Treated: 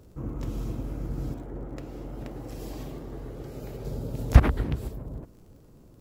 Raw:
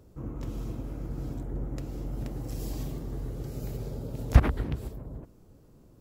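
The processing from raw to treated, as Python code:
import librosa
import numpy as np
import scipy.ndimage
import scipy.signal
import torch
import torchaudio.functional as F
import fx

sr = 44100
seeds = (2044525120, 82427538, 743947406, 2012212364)

y = fx.bass_treble(x, sr, bass_db=-8, treble_db=-8, at=(1.34, 3.85))
y = fx.dmg_crackle(y, sr, seeds[0], per_s=46.0, level_db=-53.0)
y = y * librosa.db_to_amplitude(3.0)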